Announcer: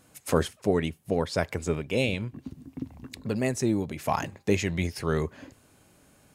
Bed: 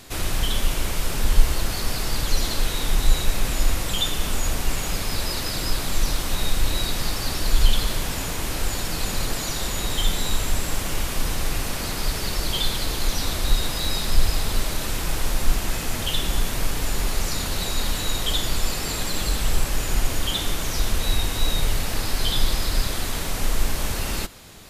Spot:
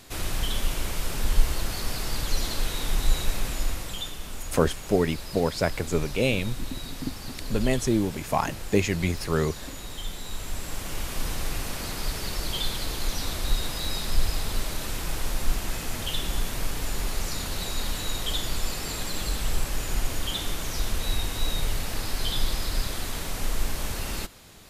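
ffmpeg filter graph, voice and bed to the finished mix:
-filter_complex "[0:a]adelay=4250,volume=2dB[a];[1:a]volume=3dB,afade=t=out:st=3.29:d=0.89:silence=0.398107,afade=t=in:st=10.23:d=1.03:silence=0.421697[b];[a][b]amix=inputs=2:normalize=0"

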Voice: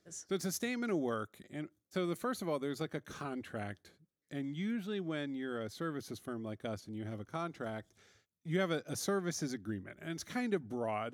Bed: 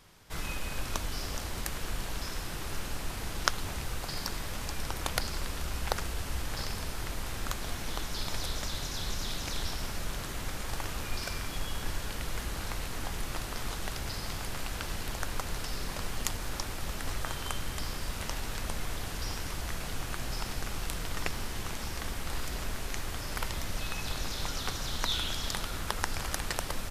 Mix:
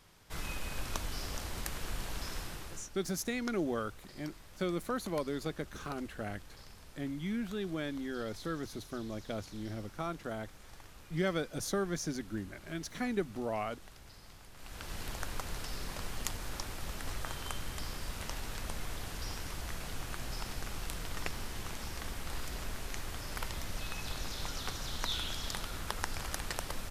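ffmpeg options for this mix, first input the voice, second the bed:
-filter_complex "[0:a]adelay=2650,volume=1dB[a];[1:a]volume=10dB,afade=t=out:st=2.39:d=0.51:silence=0.188365,afade=t=in:st=14.55:d=0.47:silence=0.211349[b];[a][b]amix=inputs=2:normalize=0"

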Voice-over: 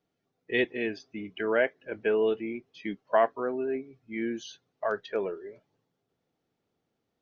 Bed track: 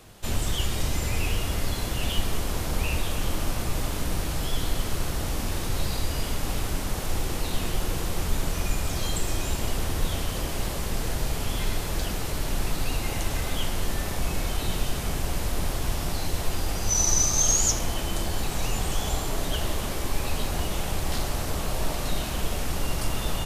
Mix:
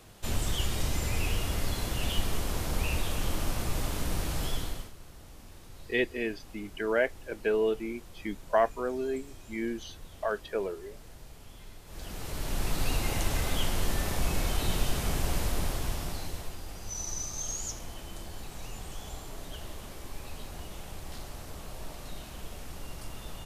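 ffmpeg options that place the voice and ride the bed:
-filter_complex "[0:a]adelay=5400,volume=-1.5dB[a];[1:a]volume=16.5dB,afade=t=out:st=4.46:d=0.46:silence=0.125893,afade=t=in:st=11.85:d=1.02:silence=0.1,afade=t=out:st=15.36:d=1.21:silence=0.237137[b];[a][b]amix=inputs=2:normalize=0"

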